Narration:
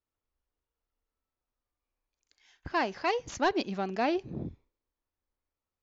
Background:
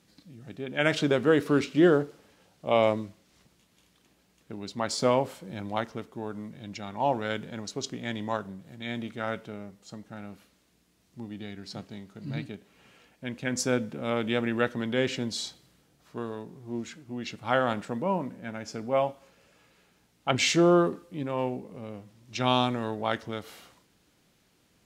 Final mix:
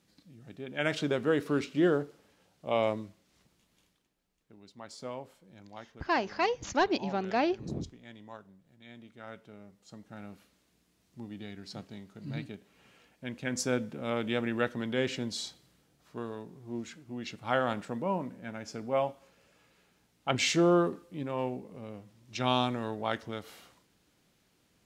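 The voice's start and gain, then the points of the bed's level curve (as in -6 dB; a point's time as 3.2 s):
3.35 s, +0.5 dB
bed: 3.84 s -5.5 dB
4.12 s -16.5 dB
9.02 s -16.5 dB
10.22 s -3.5 dB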